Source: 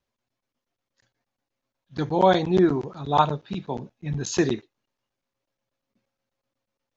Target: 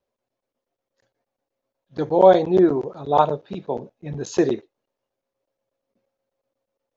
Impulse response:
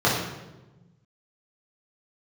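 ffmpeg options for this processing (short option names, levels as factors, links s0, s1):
-af "equalizer=f=520:t=o:w=1.5:g=13.5,volume=0.562"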